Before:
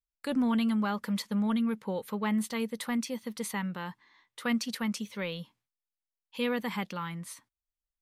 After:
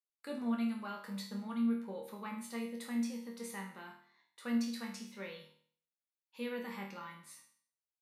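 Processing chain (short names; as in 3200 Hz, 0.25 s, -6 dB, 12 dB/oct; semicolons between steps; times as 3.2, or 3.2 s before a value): HPF 170 Hz; notch 3200 Hz, Q 9.8; resonator bank D#2 major, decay 0.53 s; gain +5.5 dB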